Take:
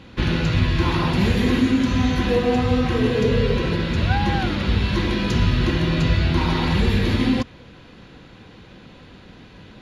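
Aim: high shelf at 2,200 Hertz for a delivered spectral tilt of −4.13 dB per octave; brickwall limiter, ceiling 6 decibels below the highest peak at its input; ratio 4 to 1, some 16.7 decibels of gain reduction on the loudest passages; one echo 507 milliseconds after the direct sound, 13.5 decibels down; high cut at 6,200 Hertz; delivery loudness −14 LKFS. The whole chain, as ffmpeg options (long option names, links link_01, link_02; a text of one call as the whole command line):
ffmpeg -i in.wav -af "lowpass=6200,highshelf=frequency=2200:gain=8.5,acompressor=threshold=-35dB:ratio=4,alimiter=level_in=4dB:limit=-24dB:level=0:latency=1,volume=-4dB,aecho=1:1:507:0.211,volume=23.5dB" out.wav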